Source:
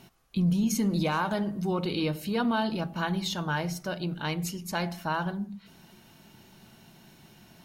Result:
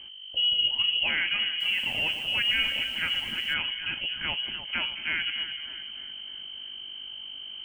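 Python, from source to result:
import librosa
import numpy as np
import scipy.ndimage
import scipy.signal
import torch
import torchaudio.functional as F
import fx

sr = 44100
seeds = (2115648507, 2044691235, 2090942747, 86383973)

y = scipy.signal.sosfilt(scipy.signal.butter(2, 120.0, 'highpass', fs=sr, output='sos'), x)
y = fx.add_hum(y, sr, base_hz=50, snr_db=15)
y = fx.echo_split(y, sr, split_hz=1200.0, low_ms=220, high_ms=301, feedback_pct=52, wet_db=-10)
y = fx.freq_invert(y, sr, carrier_hz=3100)
y = fx.echo_crushed(y, sr, ms=122, feedback_pct=35, bits=7, wet_db=-9.5, at=(1.48, 3.54))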